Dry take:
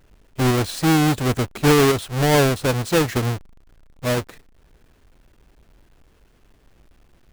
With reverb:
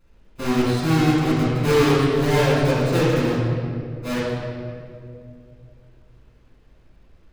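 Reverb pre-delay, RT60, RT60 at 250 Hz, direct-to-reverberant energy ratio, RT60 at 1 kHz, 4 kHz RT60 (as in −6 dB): 4 ms, 2.4 s, 3.0 s, −9.5 dB, 2.0 s, 1.5 s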